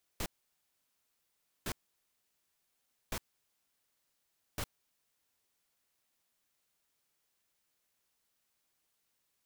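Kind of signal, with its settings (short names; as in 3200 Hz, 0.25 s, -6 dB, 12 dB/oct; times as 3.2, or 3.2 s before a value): noise bursts pink, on 0.06 s, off 1.40 s, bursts 4, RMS -36.5 dBFS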